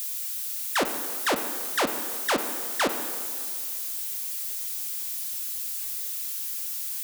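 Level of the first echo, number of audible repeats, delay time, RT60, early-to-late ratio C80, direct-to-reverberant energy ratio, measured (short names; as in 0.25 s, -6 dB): none, none, none, 2.2 s, 9.0 dB, 6.5 dB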